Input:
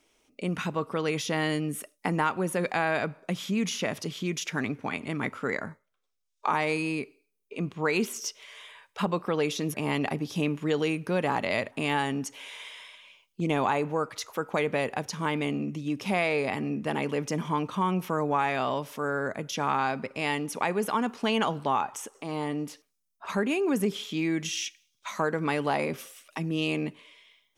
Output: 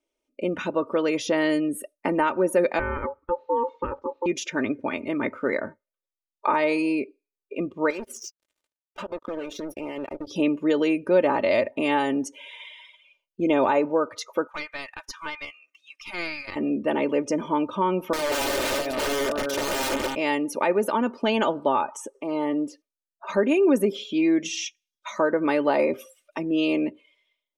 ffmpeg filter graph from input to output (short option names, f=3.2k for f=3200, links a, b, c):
-filter_complex "[0:a]asettb=1/sr,asplit=3[a][b][c];[a]atrim=end=2.794[d];[b]atrim=start=2.79:end=4.26,asetpts=PTS-STARTPTS,afade=t=in:d=0.004:c=qsin,afade=t=out:st=1.466:d=0.004:c=qsin,lowpass=1.1k,aeval=exprs='val(0)*sin(2*PI*700*n/s)':c=same[e];[c]atrim=start=4.256[f];[d][e]acrossfade=d=0.004:c1=hsin:c2=qsin[g];[g][f]acrossfade=d=0.004:c1=qsin:c2=hsin,asettb=1/sr,asplit=3[h][i][j];[h]atrim=end=7.904[k];[i]atrim=start=7.9:end=10.27,asetpts=PTS-STARTPTS,afade=t=in:d=0.004:c=qsin,afade=t=out:st=2.366:d=0.004:c=qsin,acompressor=threshold=-34dB:ratio=10:attack=3.2:release=140:knee=1:detection=peak,acrusher=bits=5:mix=0:aa=0.5[l];[j]atrim=start=10.266[m];[k][l]acrossfade=d=0.004:c1=hsin:c2=qsin[n];[n][m]acrossfade=d=0.004:c1=qsin:c2=hsin,asettb=1/sr,asplit=3[o][p][q];[o]atrim=end=14.474[r];[p]atrim=start=14.47:end=16.56,asetpts=PTS-STARTPTS,afade=t=in:d=0.004:c=qsin,afade=t=out:st=2.086:d=0.004:c=qsin,highpass=f=1.1k:w=0.5412,highpass=f=1.1k:w=1.3066,aeval=exprs='clip(val(0),-1,0.0112)':c=same[s];[q]atrim=start=16.556[t];[r][s]acrossfade=d=0.004:c1=hsin:c2=qsin[u];[u][t]acrossfade=d=0.004:c1=qsin:c2=hsin,asettb=1/sr,asplit=3[v][w][x];[v]atrim=end=18.134[y];[w]atrim=start=18.13:end=20.15,asetpts=PTS-STARTPTS,afade=t=in:d=0.004:c=qsin,afade=t=out:st=2.016:d=0.004:c=qsin,lowshelf=f=190:g=5.5,aecho=1:1:327|654|981:0.501|0.13|0.0339,atrim=end_sample=89082,aeval=exprs='(mod(15.8*val(0)+1,2)-1)/15.8':c=same[z];[x]atrim=start=20.146[aa];[y][z]acrossfade=d=0.004:c1=hsin:c2=qsin[ab];[ab][aa]acrossfade=d=0.004:c1=qsin:c2=hsin,afftdn=nr=19:nf=-45,equalizer=f=470:w=2.1:g=12,aecho=1:1:3.3:0.68"